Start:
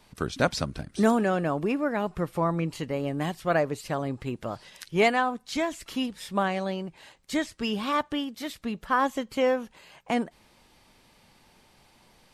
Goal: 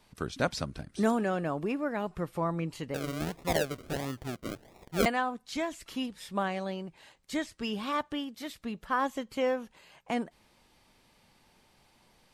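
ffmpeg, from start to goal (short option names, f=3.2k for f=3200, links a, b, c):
-filter_complex "[0:a]asettb=1/sr,asplit=3[a][b][c];[a]atrim=end=2.944[d];[b]atrim=start=2.94:end=5.06,asetpts=PTS-STARTPTS,afade=t=in:d=0.004:c=qsin,afade=t=out:st=2.116:d=0.004:c=qsin,acrusher=samples=40:mix=1:aa=0.000001:lfo=1:lforange=24:lforate=1.5[e];[c]atrim=start=5.056[f];[d][e]acrossfade=d=0.004:c1=hsin:c2=qsin[g];[g][f]acrossfade=d=0.004:c1=qsin:c2=hsin,volume=-5dB"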